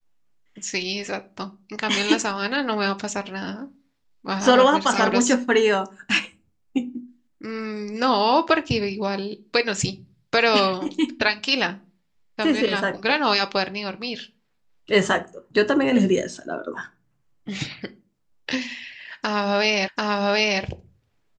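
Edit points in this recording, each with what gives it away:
19.88 repeat of the last 0.74 s

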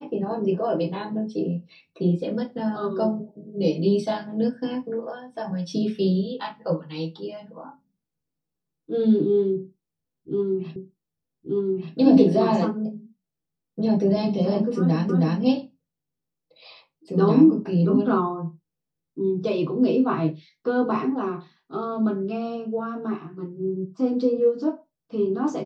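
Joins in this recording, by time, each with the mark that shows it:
10.76 repeat of the last 1.18 s
15.09 repeat of the last 0.32 s

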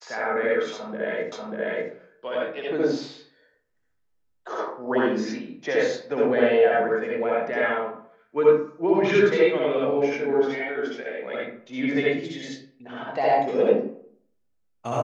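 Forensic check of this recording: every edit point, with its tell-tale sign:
1.32 repeat of the last 0.59 s

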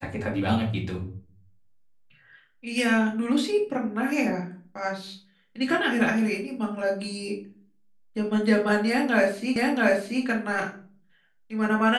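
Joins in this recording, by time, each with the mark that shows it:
9.56 repeat of the last 0.68 s

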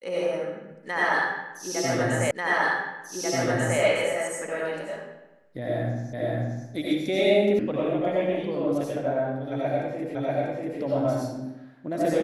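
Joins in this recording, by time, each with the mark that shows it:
2.31 repeat of the last 1.49 s
6.13 repeat of the last 0.53 s
7.59 sound cut off
10.15 repeat of the last 0.64 s

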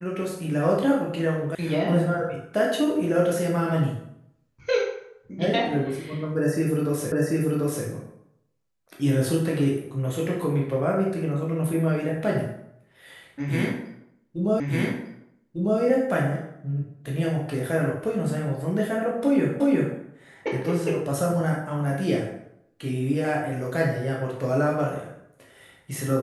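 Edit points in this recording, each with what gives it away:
1.55 sound cut off
7.12 repeat of the last 0.74 s
14.6 repeat of the last 1.2 s
19.6 repeat of the last 0.36 s

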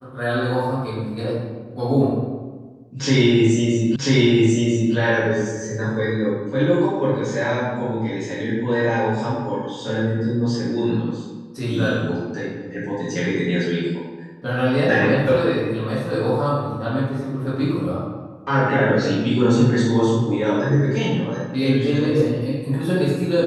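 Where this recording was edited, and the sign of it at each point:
3.96 repeat of the last 0.99 s

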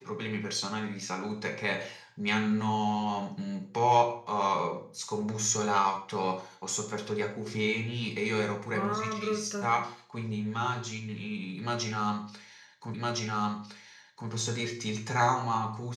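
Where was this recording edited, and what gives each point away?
12.94 repeat of the last 1.36 s

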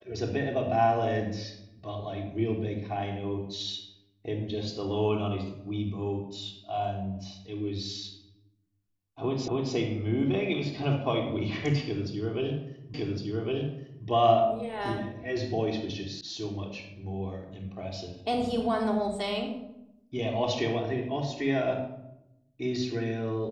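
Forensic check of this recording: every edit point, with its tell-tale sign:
9.48 repeat of the last 0.27 s
12.94 repeat of the last 1.11 s
16.21 sound cut off

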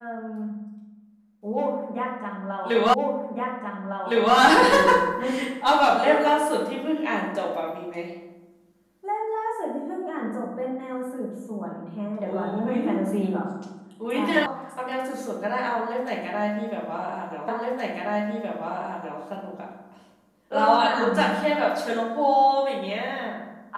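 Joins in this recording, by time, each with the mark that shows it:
2.94 repeat of the last 1.41 s
14.46 sound cut off
17.48 repeat of the last 1.72 s

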